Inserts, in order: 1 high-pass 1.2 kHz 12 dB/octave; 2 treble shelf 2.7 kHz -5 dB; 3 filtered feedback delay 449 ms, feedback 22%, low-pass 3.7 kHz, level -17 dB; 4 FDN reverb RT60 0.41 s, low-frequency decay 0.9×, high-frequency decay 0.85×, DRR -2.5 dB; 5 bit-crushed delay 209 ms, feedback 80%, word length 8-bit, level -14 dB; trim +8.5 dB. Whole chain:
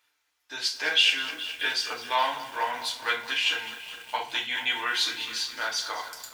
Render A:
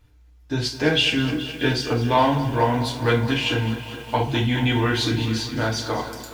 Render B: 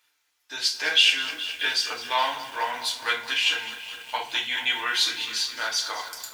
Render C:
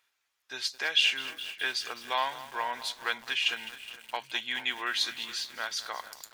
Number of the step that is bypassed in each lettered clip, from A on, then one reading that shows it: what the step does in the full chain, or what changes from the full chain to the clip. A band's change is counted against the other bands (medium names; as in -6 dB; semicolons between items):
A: 1, 250 Hz band +25.0 dB; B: 2, 8 kHz band +3.5 dB; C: 4, loudness change -4.0 LU